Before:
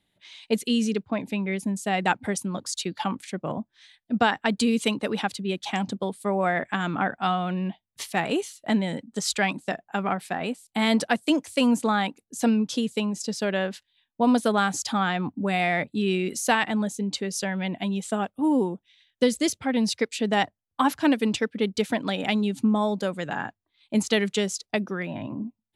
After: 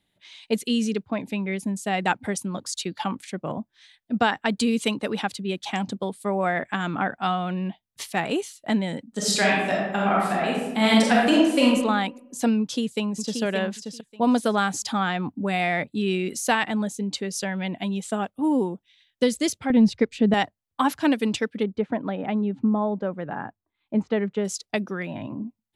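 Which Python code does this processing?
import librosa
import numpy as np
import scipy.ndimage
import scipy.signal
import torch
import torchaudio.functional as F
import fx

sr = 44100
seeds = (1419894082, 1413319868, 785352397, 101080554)

y = fx.reverb_throw(x, sr, start_s=9.09, length_s=2.57, rt60_s=1.0, drr_db=-4.0)
y = fx.echo_throw(y, sr, start_s=12.6, length_s=0.82, ms=580, feedback_pct=15, wet_db=-6.0)
y = fx.riaa(y, sr, side='playback', at=(19.7, 20.34))
y = fx.lowpass(y, sr, hz=1300.0, slope=12, at=(21.62, 24.44), fade=0.02)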